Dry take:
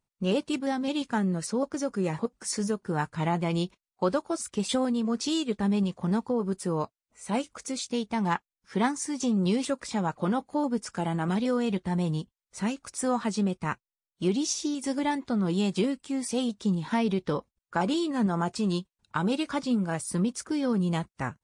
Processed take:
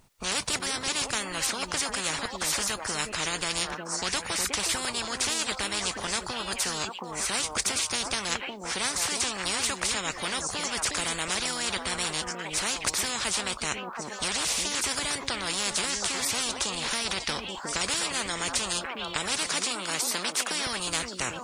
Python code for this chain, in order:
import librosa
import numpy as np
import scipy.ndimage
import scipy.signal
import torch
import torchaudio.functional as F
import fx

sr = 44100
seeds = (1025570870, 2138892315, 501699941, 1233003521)

y = fx.highpass(x, sr, hz=250.0, slope=24, at=(19.47, 20.67))
y = fx.echo_stepped(y, sr, ms=361, hz=320.0, octaves=1.4, feedback_pct=70, wet_db=-9.5)
y = fx.spectral_comp(y, sr, ratio=10.0)
y = y * 10.0 ** (4.0 / 20.0)